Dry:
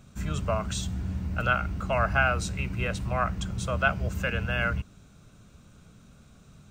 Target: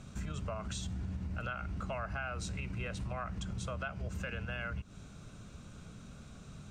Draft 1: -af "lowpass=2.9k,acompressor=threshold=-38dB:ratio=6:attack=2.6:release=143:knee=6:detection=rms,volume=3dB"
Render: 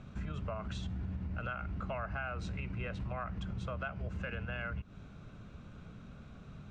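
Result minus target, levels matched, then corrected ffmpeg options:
8000 Hz band -13.5 dB
-af "lowpass=9.9k,acompressor=threshold=-38dB:ratio=6:attack=2.6:release=143:knee=6:detection=rms,volume=3dB"

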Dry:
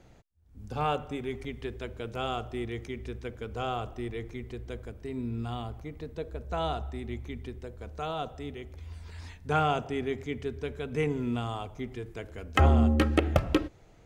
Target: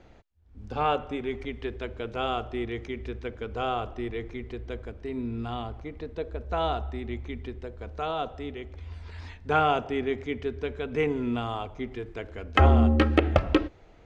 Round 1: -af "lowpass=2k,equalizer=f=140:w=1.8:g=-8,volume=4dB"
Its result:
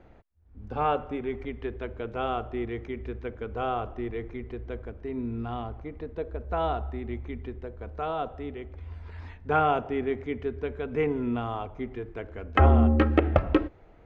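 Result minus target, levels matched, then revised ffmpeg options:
4000 Hz band -7.0 dB
-af "lowpass=4.1k,equalizer=f=140:w=1.8:g=-8,volume=4dB"

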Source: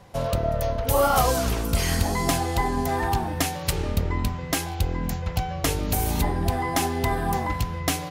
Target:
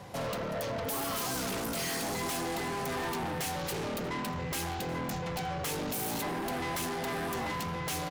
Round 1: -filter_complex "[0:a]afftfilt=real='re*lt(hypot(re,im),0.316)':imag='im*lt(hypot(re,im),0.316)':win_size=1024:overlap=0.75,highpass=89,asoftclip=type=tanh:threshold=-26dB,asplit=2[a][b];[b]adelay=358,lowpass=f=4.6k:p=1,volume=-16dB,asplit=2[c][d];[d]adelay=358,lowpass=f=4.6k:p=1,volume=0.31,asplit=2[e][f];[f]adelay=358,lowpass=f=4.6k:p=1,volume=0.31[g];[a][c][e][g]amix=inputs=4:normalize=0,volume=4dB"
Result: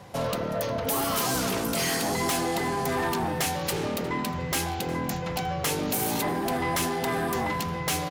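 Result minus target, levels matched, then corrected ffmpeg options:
soft clip: distortion -6 dB
-filter_complex "[0:a]afftfilt=real='re*lt(hypot(re,im),0.316)':imag='im*lt(hypot(re,im),0.316)':win_size=1024:overlap=0.75,highpass=89,asoftclip=type=tanh:threshold=-36.5dB,asplit=2[a][b];[b]adelay=358,lowpass=f=4.6k:p=1,volume=-16dB,asplit=2[c][d];[d]adelay=358,lowpass=f=4.6k:p=1,volume=0.31,asplit=2[e][f];[f]adelay=358,lowpass=f=4.6k:p=1,volume=0.31[g];[a][c][e][g]amix=inputs=4:normalize=0,volume=4dB"

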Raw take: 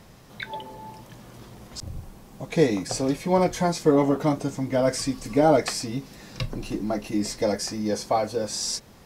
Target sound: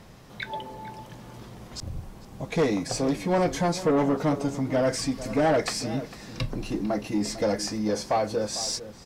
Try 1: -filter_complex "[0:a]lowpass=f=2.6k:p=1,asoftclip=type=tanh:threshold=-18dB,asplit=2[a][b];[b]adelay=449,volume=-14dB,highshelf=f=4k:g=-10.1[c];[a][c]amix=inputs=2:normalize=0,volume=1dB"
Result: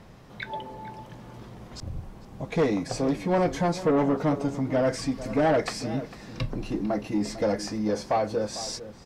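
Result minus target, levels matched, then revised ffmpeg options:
8000 Hz band -5.5 dB
-filter_complex "[0:a]lowpass=f=7.2k:p=1,asoftclip=type=tanh:threshold=-18dB,asplit=2[a][b];[b]adelay=449,volume=-14dB,highshelf=f=4k:g=-10.1[c];[a][c]amix=inputs=2:normalize=0,volume=1dB"

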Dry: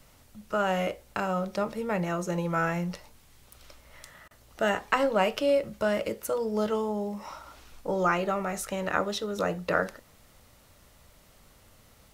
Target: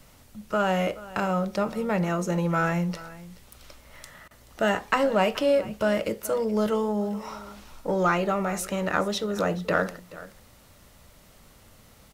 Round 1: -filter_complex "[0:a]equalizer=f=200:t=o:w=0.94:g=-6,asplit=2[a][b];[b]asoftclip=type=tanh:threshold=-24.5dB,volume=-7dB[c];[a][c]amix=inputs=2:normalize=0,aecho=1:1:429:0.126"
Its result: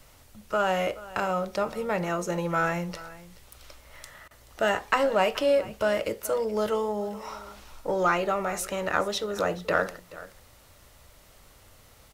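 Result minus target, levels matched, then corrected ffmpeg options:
250 Hz band -5.0 dB
-filter_complex "[0:a]equalizer=f=200:t=o:w=0.94:g=2.5,asplit=2[a][b];[b]asoftclip=type=tanh:threshold=-24.5dB,volume=-7dB[c];[a][c]amix=inputs=2:normalize=0,aecho=1:1:429:0.126"

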